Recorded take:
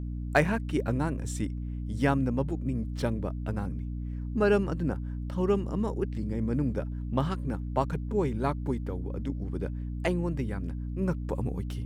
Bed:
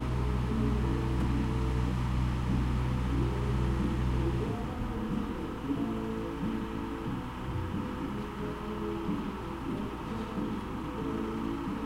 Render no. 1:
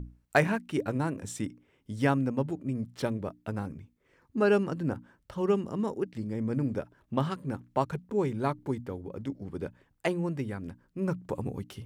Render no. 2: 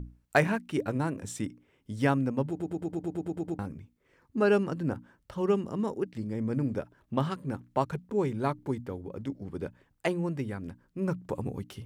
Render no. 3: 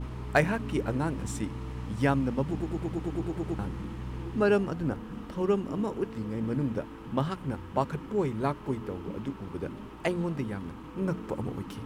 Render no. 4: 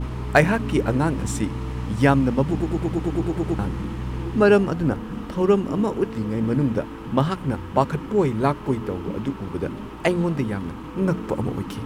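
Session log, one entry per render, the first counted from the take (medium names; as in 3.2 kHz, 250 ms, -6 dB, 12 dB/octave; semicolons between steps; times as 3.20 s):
hum notches 60/120/180/240/300 Hz
2.49 s: stutter in place 0.11 s, 10 plays
add bed -7.5 dB
trim +8.5 dB; peak limiter -3 dBFS, peak gain reduction 1 dB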